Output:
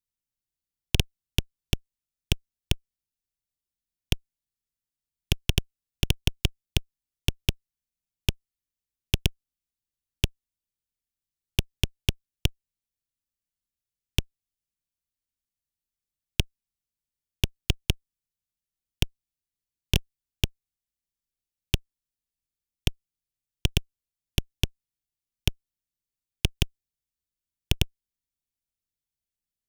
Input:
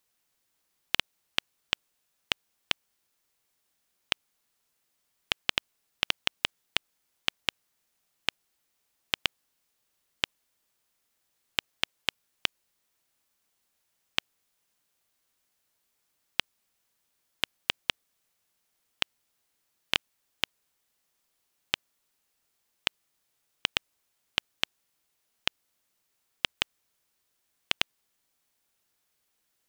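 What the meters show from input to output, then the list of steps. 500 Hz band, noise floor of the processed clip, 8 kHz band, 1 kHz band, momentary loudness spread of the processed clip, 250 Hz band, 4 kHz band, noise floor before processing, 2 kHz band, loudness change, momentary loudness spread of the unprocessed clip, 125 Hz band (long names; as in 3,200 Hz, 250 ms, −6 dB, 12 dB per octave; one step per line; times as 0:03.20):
+5.5 dB, below −85 dBFS, +7.0 dB, −6.5 dB, 3 LU, +13.5 dB, −1.0 dB, −77 dBFS, −3.5 dB, +2.0 dB, 3 LU, +24.5 dB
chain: guitar amp tone stack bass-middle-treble 10-0-1
in parallel at −3 dB: fuzz pedal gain 63 dB, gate −57 dBFS
on the sum: level +4.5 dB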